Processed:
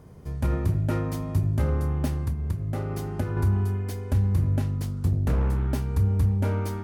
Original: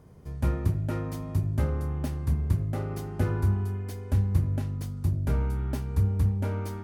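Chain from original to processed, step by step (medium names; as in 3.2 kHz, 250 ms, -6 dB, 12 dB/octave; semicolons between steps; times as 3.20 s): 2.22–3.37 s: compression 6:1, threshold -29 dBFS, peak gain reduction 10 dB; peak limiter -19.5 dBFS, peak gain reduction 6.5 dB; 4.82–5.67 s: loudspeaker Doppler distortion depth 0.49 ms; trim +4.5 dB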